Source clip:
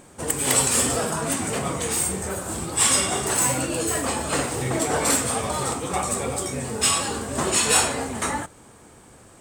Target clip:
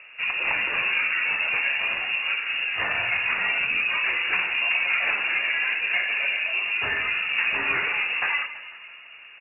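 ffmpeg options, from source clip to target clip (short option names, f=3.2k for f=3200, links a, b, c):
-filter_complex "[0:a]aemphasis=mode=reproduction:type=75kf,acompressor=threshold=-24dB:ratio=6,asplit=7[a][b][c][d][e][f][g];[b]adelay=166,afreqshift=-38,volume=-14dB[h];[c]adelay=332,afreqshift=-76,volume=-18.7dB[i];[d]adelay=498,afreqshift=-114,volume=-23.5dB[j];[e]adelay=664,afreqshift=-152,volume=-28.2dB[k];[f]adelay=830,afreqshift=-190,volume=-32.9dB[l];[g]adelay=996,afreqshift=-228,volume=-37.7dB[m];[a][h][i][j][k][l][m]amix=inputs=7:normalize=0,lowpass=f=2.5k:t=q:w=0.5098,lowpass=f=2.5k:t=q:w=0.6013,lowpass=f=2.5k:t=q:w=0.9,lowpass=f=2.5k:t=q:w=2.563,afreqshift=-2900,volume=4dB"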